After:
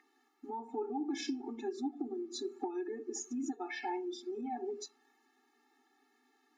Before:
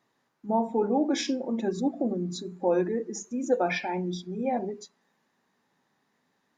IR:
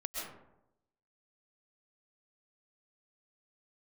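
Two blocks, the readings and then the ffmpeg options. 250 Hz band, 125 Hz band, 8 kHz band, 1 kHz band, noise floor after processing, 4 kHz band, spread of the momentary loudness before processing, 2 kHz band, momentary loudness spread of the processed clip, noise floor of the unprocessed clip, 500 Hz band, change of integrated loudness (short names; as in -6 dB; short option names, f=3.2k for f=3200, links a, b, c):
-10.0 dB, under -30 dB, -5.5 dB, -10.0 dB, -74 dBFS, -8.5 dB, 8 LU, -10.5 dB, 6 LU, -74 dBFS, -12.0 dB, -11.0 dB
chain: -af "aeval=exprs='val(0)+0.00282*sin(2*PI*1900*n/s)':c=same,acompressor=threshold=-36dB:ratio=10,afftfilt=real='re*eq(mod(floor(b*sr/1024/230),2),1)':imag='im*eq(mod(floor(b*sr/1024/230),2),1)':win_size=1024:overlap=0.75,volume=4dB"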